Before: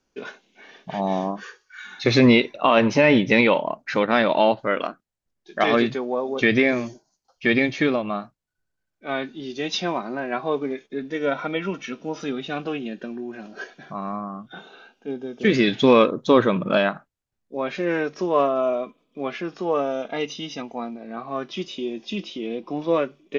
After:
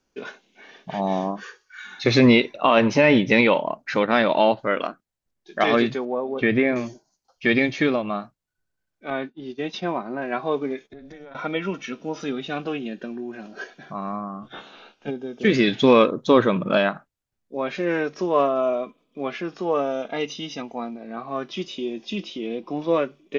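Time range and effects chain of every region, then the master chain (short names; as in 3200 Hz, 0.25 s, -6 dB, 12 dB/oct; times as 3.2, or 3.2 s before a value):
6.05–6.76 block floating point 7-bit + air absorption 360 m
9.1–10.22 LPF 1900 Hz 6 dB/oct + expander -32 dBFS
10.87–11.35 compressor 16:1, threshold -35 dBFS + notch 2800 Hz, Q 7.4 + AM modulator 290 Hz, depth 45%
14.41–15.09 spectral limiter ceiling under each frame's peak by 16 dB + LPF 5700 Hz + doubler 14 ms -5 dB
whole clip: dry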